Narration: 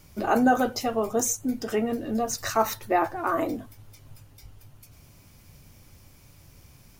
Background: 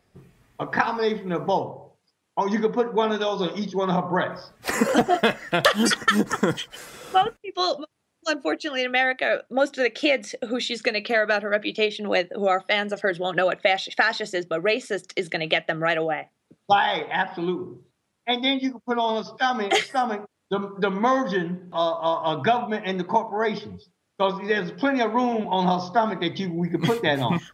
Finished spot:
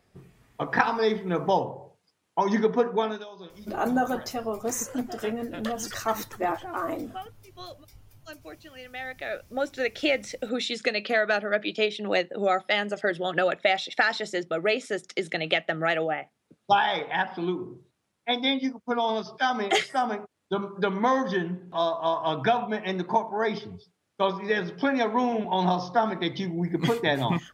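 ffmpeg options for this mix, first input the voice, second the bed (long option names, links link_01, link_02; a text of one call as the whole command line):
ffmpeg -i stem1.wav -i stem2.wav -filter_complex "[0:a]adelay=3500,volume=-4.5dB[link_01];[1:a]volume=16dB,afade=type=out:start_time=2.86:duration=0.4:silence=0.11885,afade=type=in:start_time=8.89:duration=1.37:silence=0.149624[link_02];[link_01][link_02]amix=inputs=2:normalize=0" out.wav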